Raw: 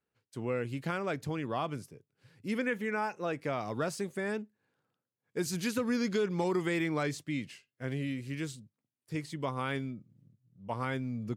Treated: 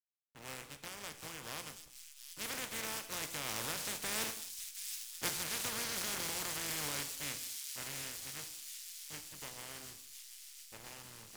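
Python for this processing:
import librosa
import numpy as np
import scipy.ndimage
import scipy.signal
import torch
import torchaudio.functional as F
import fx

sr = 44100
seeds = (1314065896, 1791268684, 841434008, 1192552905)

p1 = fx.spec_flatten(x, sr, power=0.18)
p2 = fx.doppler_pass(p1, sr, speed_mps=11, closest_m=1.6, pass_at_s=4.67)
p3 = fx.over_compress(p2, sr, threshold_db=-56.0, ratio=-0.5)
p4 = p2 + F.gain(torch.from_numpy(p3), 0.5).numpy()
p5 = fx.backlash(p4, sr, play_db=-50.5)
p6 = p5 + fx.echo_wet_highpass(p5, sr, ms=725, feedback_pct=73, hz=4300.0, wet_db=-4.0, dry=0)
p7 = fx.rev_gated(p6, sr, seeds[0], gate_ms=260, shape='falling', drr_db=7.5)
y = F.gain(torch.from_numpy(p7), 8.5).numpy()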